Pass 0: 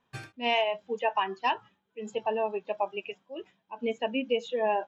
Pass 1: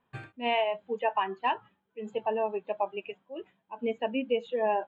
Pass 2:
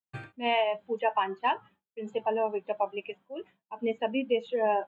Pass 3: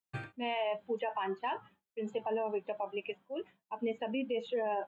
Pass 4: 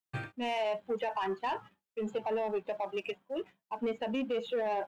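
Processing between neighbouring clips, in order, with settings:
running mean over 8 samples
expander -53 dBFS; gain +1 dB
limiter -26 dBFS, peak gain reduction 11 dB
sample leveller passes 1

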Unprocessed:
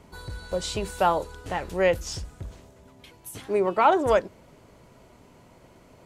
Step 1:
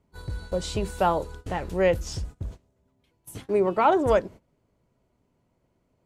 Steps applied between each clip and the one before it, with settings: gate -41 dBFS, range -19 dB; low shelf 450 Hz +7.5 dB; gain -3 dB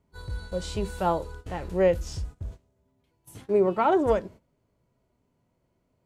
harmonic-percussive split harmonic +9 dB; gain -8 dB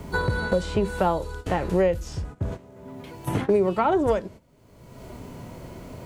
three-band squash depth 100%; gain +2.5 dB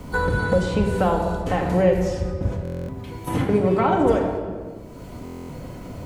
shoebox room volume 2300 m³, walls mixed, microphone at 2 m; stuck buffer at 2.63/5.24, samples 1024, times 10

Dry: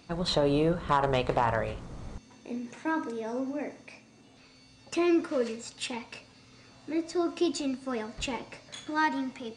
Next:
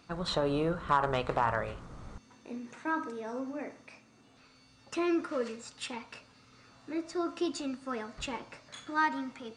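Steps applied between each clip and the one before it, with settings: bell 1300 Hz +7.5 dB 0.73 oct; gain -5 dB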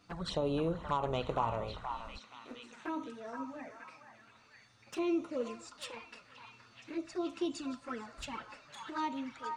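envelope flanger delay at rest 11 ms, full sweep at -30 dBFS; delay with a stepping band-pass 0.473 s, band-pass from 1200 Hz, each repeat 0.7 oct, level -2.5 dB; gain -2 dB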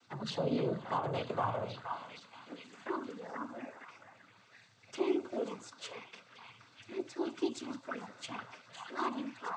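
noise vocoder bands 16

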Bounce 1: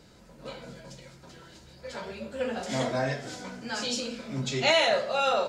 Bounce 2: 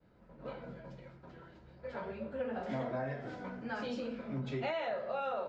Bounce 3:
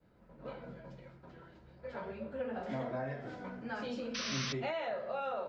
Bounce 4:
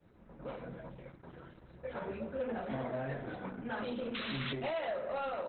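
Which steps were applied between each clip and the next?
LPF 1700 Hz 12 dB/oct; expander -50 dBFS; compressor 6:1, threshold -31 dBFS, peak gain reduction 10 dB; gain -2.5 dB
painted sound noise, 4.14–4.53, 1000–6200 Hz -38 dBFS; gain -1 dB
soft clip -34.5 dBFS, distortion -14 dB; gain +4.5 dB; Opus 8 kbps 48000 Hz

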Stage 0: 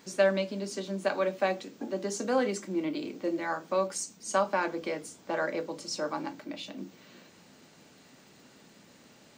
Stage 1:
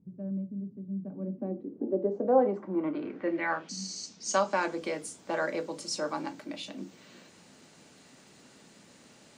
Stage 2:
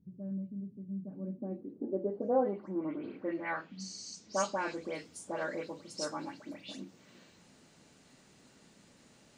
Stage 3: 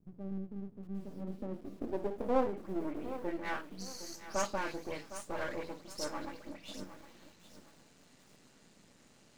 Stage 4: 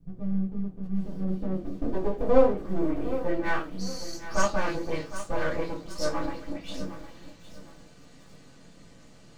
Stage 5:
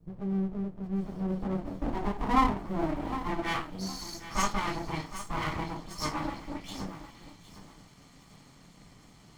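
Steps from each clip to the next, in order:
low-pass sweep 150 Hz -> 11000 Hz, 0.95–4.87; spectral repair 3.72–4.01, 310–11000 Hz after
low shelf 87 Hz +12 dB; dispersion highs, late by 0.127 s, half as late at 2800 Hz; gain -6 dB
half-wave gain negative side -12 dB; lo-fi delay 0.76 s, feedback 35%, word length 9-bit, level -12.5 dB; gain +1.5 dB
reverb RT60 0.20 s, pre-delay 3 ms, DRR -6.5 dB
minimum comb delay 0.92 ms

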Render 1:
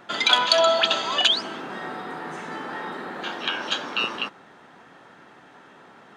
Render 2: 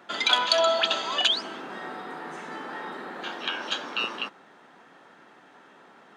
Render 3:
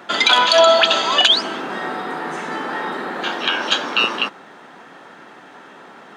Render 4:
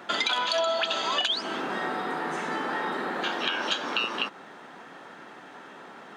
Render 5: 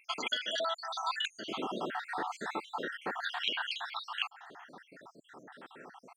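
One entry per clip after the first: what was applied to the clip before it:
HPF 180 Hz 12 dB/oct; gain -3.5 dB
maximiser +12.5 dB; gain -1 dB
compressor 4:1, threshold -21 dBFS, peak gain reduction 11 dB; gain -4 dB
random spectral dropouts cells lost 68%; gain -2.5 dB

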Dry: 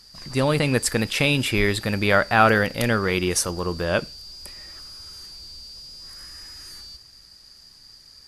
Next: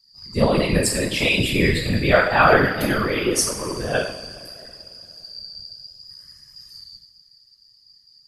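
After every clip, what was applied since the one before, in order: per-bin expansion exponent 1.5; two-slope reverb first 0.58 s, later 3.1 s, from -18 dB, DRR -4.5 dB; whisperiser; gain -1 dB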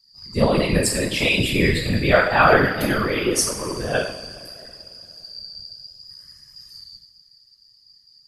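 nothing audible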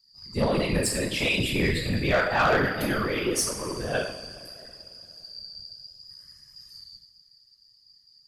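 soft clip -11 dBFS, distortion -15 dB; gain -4.5 dB

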